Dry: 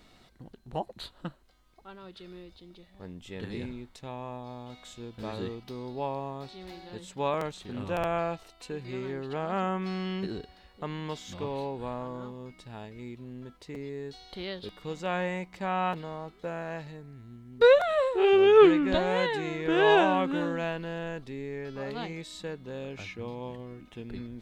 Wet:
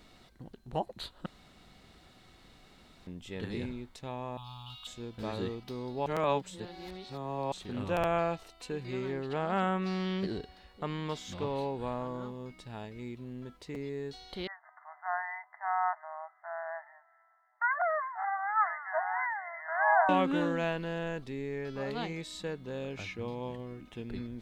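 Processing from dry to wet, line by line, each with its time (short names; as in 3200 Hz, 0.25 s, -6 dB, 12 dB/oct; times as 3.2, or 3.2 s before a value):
1.26–3.07 room tone
4.37–4.87 EQ curve 130 Hz 0 dB, 230 Hz -17 dB, 360 Hz -24 dB, 570 Hz -28 dB, 870 Hz -2 dB, 1300 Hz +2 dB, 2000 Hz -21 dB, 2800 Hz +14 dB, 6300 Hz -4 dB, 12000 Hz +7 dB
6.06–7.52 reverse
9.11–11.59 Doppler distortion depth 0.14 ms
14.47–20.09 brick-wall FIR band-pass 620–2100 Hz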